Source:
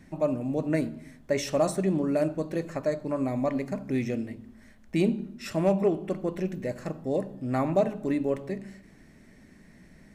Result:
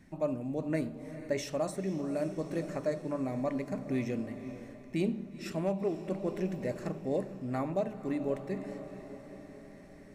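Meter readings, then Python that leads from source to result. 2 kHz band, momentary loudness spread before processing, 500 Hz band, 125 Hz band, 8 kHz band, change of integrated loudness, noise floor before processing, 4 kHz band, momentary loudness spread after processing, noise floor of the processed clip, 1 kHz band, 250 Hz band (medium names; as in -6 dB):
-5.5 dB, 9 LU, -6.0 dB, -5.5 dB, -6.5 dB, -6.0 dB, -55 dBFS, -6.0 dB, 13 LU, -51 dBFS, -6.5 dB, -5.5 dB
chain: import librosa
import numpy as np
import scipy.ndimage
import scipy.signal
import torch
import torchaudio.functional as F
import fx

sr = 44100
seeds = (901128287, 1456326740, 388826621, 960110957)

y = fx.echo_diffused(x, sr, ms=478, feedback_pct=57, wet_db=-13.5)
y = fx.rider(y, sr, range_db=3, speed_s=0.5)
y = y * librosa.db_to_amplitude(-6.0)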